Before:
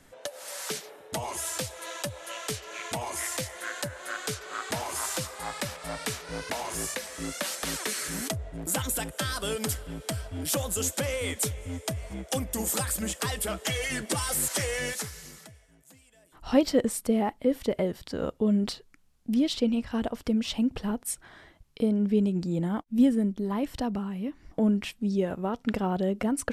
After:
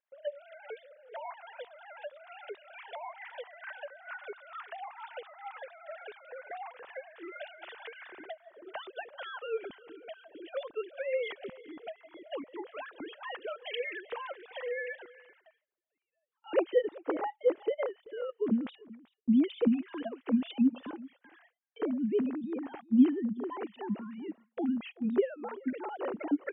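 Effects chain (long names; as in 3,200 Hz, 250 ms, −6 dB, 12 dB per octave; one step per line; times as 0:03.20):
three sine waves on the formant tracks
single-tap delay 385 ms −21 dB
noise gate with hold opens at −48 dBFS
level −5 dB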